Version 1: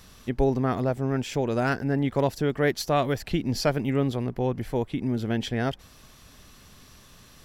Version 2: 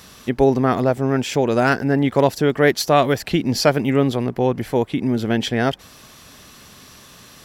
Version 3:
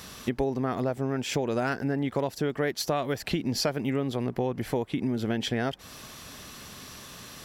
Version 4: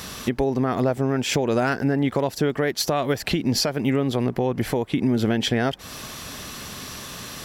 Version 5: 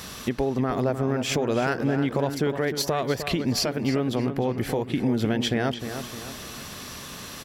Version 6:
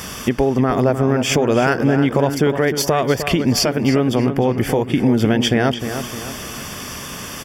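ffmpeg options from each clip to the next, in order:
ffmpeg -i in.wav -af "highpass=frequency=170:poles=1,volume=9dB" out.wav
ffmpeg -i in.wav -af "acompressor=threshold=-25dB:ratio=6" out.wav
ffmpeg -i in.wav -af "alimiter=limit=-20dB:level=0:latency=1:release=273,volume=8.5dB" out.wav
ffmpeg -i in.wav -filter_complex "[0:a]asplit=2[link_01][link_02];[link_02]adelay=306,lowpass=frequency=3300:poles=1,volume=-9dB,asplit=2[link_03][link_04];[link_04]adelay=306,lowpass=frequency=3300:poles=1,volume=0.47,asplit=2[link_05][link_06];[link_06]adelay=306,lowpass=frequency=3300:poles=1,volume=0.47,asplit=2[link_07][link_08];[link_08]adelay=306,lowpass=frequency=3300:poles=1,volume=0.47,asplit=2[link_09][link_10];[link_10]adelay=306,lowpass=frequency=3300:poles=1,volume=0.47[link_11];[link_01][link_03][link_05][link_07][link_09][link_11]amix=inputs=6:normalize=0,volume=-3dB" out.wav
ffmpeg -i in.wav -af "asuperstop=centerf=4000:order=4:qfactor=5,volume=8.5dB" out.wav

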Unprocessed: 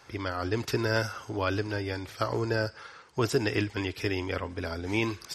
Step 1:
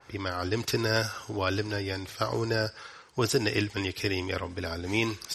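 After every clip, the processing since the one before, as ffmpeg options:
ffmpeg -i in.wav -af "adynamicequalizer=threshold=0.00631:dfrequency=2900:dqfactor=0.7:tfrequency=2900:tqfactor=0.7:attack=5:release=100:ratio=0.375:range=3:mode=boostabove:tftype=highshelf" out.wav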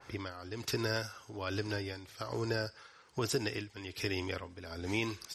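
ffmpeg -i in.wav -af "acompressor=threshold=-34dB:ratio=2,tremolo=f=1.2:d=0.73" out.wav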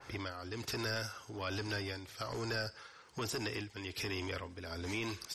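ffmpeg -i in.wav -filter_complex "[0:a]acrossover=split=1100[link_01][link_02];[link_01]asoftclip=type=tanh:threshold=-38.5dB[link_03];[link_02]alimiter=level_in=7dB:limit=-24dB:level=0:latency=1:release=66,volume=-7dB[link_04];[link_03][link_04]amix=inputs=2:normalize=0,volume=2dB" out.wav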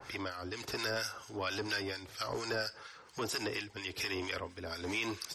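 ffmpeg -i in.wav -filter_complex "[0:a]acrossover=split=260|4000[link_01][link_02][link_03];[link_01]acompressor=threshold=-53dB:ratio=5[link_04];[link_04][link_02][link_03]amix=inputs=3:normalize=0,acrossover=split=1200[link_05][link_06];[link_05]aeval=exprs='val(0)*(1-0.7/2+0.7/2*cos(2*PI*4.3*n/s))':channel_layout=same[link_07];[link_06]aeval=exprs='val(0)*(1-0.7/2-0.7/2*cos(2*PI*4.3*n/s))':channel_layout=same[link_08];[link_07][link_08]amix=inputs=2:normalize=0,volume=6.5dB" out.wav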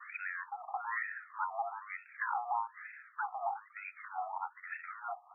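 ffmpeg -i in.wav -af "highpass=frequency=260:width_type=q:width=0.5412,highpass=frequency=260:width_type=q:width=1.307,lowpass=frequency=2300:width_type=q:width=0.5176,lowpass=frequency=2300:width_type=q:width=0.7071,lowpass=frequency=2300:width_type=q:width=1.932,afreqshift=380,afftfilt=real='re*between(b*sr/1024,890*pow(1900/890,0.5+0.5*sin(2*PI*1.1*pts/sr))/1.41,890*pow(1900/890,0.5+0.5*sin(2*PI*1.1*pts/sr))*1.41)':imag='im*between(b*sr/1024,890*pow(1900/890,0.5+0.5*sin(2*PI*1.1*pts/sr))/1.41,890*pow(1900/890,0.5+0.5*sin(2*PI*1.1*pts/sr))*1.41)':win_size=1024:overlap=0.75,volume=4dB" out.wav

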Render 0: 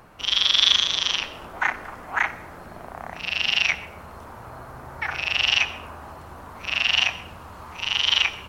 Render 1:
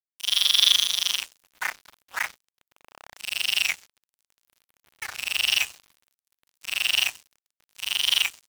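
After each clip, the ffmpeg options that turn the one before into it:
ffmpeg -i in.wav -af "aeval=exprs='sgn(val(0))*max(abs(val(0))-0.0251,0)':channel_layout=same,crystalizer=i=5:c=0,volume=-9dB" out.wav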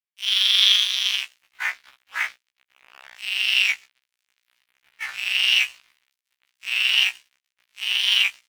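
ffmpeg -i in.wav -af "equalizer=frequency=2300:width=0.61:gain=15,afftfilt=real='re*1.73*eq(mod(b,3),0)':imag='im*1.73*eq(mod(b,3),0)':win_size=2048:overlap=0.75,volume=-6.5dB" out.wav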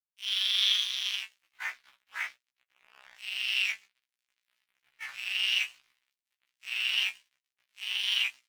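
ffmpeg -i in.wav -af "flanger=delay=7.8:depth=3.1:regen=51:speed=1.2:shape=sinusoidal,volume=-5.5dB" out.wav

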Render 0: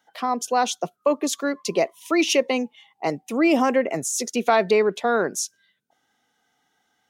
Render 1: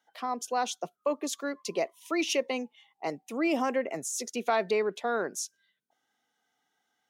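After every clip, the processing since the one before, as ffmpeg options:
ffmpeg -i in.wav -af "highpass=frequency=200:poles=1,volume=-8dB" out.wav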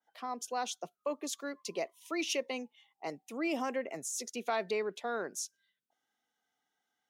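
ffmpeg -i in.wav -af "adynamicequalizer=threshold=0.00794:dfrequency=2100:dqfactor=0.7:tfrequency=2100:tqfactor=0.7:attack=5:release=100:ratio=0.375:range=1.5:mode=boostabove:tftype=highshelf,volume=-6.5dB" out.wav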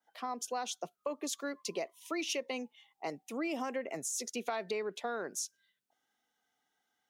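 ffmpeg -i in.wav -af "acompressor=threshold=-35dB:ratio=5,volume=2.5dB" out.wav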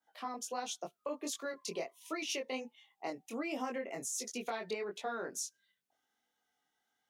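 ffmpeg -i in.wav -af "flanger=delay=19:depth=4.5:speed=1.4,volume=1.5dB" out.wav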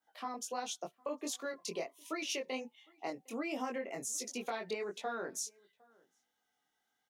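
ffmpeg -i in.wav -filter_complex "[0:a]asplit=2[link_01][link_02];[link_02]adelay=758,volume=-27dB,highshelf=frequency=4000:gain=-17.1[link_03];[link_01][link_03]amix=inputs=2:normalize=0" out.wav

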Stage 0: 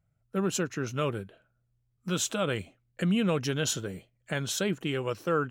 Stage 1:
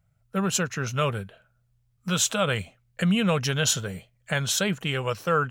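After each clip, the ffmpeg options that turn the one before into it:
ffmpeg -i in.wav -af "equalizer=frequency=320:width_type=o:width=0.7:gain=-14.5,volume=7dB" out.wav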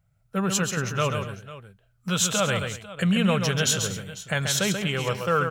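ffmpeg -i in.wav -af "aecho=1:1:135|234|497:0.501|0.15|0.15" out.wav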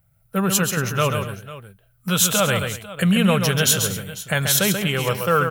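ffmpeg -i in.wav -af "aexciter=amount=4:drive=5.8:freq=9500,volume=4.5dB" out.wav

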